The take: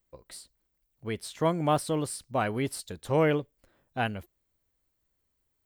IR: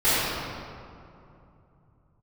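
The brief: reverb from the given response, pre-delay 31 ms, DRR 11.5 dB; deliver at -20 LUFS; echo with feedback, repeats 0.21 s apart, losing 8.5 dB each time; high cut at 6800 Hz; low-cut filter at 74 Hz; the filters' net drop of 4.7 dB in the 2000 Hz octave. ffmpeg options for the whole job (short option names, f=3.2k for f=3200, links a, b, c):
-filter_complex "[0:a]highpass=74,lowpass=6.8k,equalizer=f=2k:t=o:g=-6.5,aecho=1:1:210|420|630|840:0.376|0.143|0.0543|0.0206,asplit=2[a][b];[1:a]atrim=start_sample=2205,adelay=31[c];[b][c]afir=irnorm=-1:irlink=0,volume=-31dB[d];[a][d]amix=inputs=2:normalize=0,volume=9.5dB"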